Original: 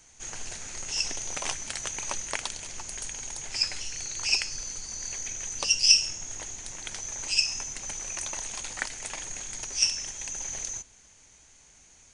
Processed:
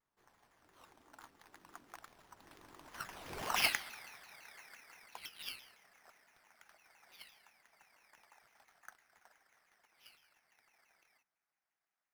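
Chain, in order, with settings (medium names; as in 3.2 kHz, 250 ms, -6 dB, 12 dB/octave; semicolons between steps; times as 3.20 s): Doppler pass-by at 3.52 s, 58 m/s, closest 7 m; high-pass 170 Hz 24 dB/octave; high-order bell 1.1 kHz +14.5 dB; sample-rate reducer 7.6 kHz, jitter 0%; vibrato with a chosen wave saw down 5.9 Hz, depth 250 cents; trim -5 dB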